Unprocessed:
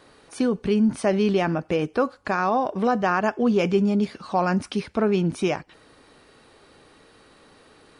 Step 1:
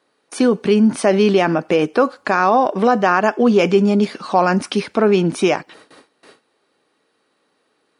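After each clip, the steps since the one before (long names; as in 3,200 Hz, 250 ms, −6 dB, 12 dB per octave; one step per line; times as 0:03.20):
noise gate with hold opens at −41 dBFS
high-pass filter 220 Hz 12 dB per octave
in parallel at −1.5 dB: brickwall limiter −15.5 dBFS, peak gain reduction 7.5 dB
on the sum: level +4 dB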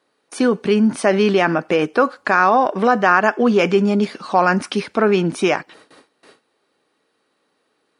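dynamic equaliser 1,600 Hz, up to +6 dB, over −30 dBFS, Q 1.1
level −2 dB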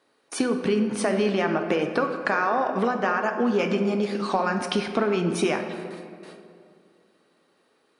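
downward compressor, threshold −21 dBFS, peak gain reduction 12.5 dB
convolution reverb RT60 2.4 s, pre-delay 7 ms, DRR 5 dB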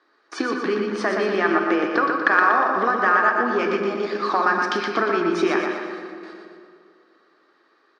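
phase distortion by the signal itself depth 0.053 ms
loudspeaker in its box 320–5,800 Hz, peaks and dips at 330 Hz +9 dB, 530 Hz −4 dB, 1,200 Hz +9 dB, 1,700 Hz +9 dB, 2,800 Hz −4 dB, 4,900 Hz +3 dB
on a send: repeating echo 120 ms, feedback 50%, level −5 dB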